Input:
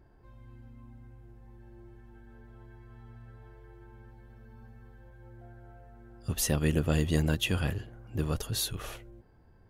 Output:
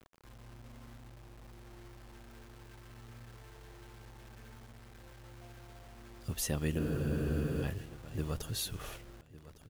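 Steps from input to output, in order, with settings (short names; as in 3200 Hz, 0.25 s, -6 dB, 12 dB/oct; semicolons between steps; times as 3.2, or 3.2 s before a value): in parallel at -2 dB: compressor, threshold -39 dBFS, peak gain reduction 16.5 dB; on the sum: requantised 8-bit, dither none; feedback echo 1.157 s, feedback 22%, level -18 dB; spectral freeze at 6.8, 0.83 s; gain -7.5 dB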